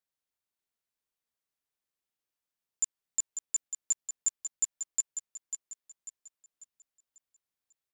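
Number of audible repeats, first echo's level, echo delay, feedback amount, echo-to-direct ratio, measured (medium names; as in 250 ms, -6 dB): 4, -8.5 dB, 544 ms, 41%, -7.5 dB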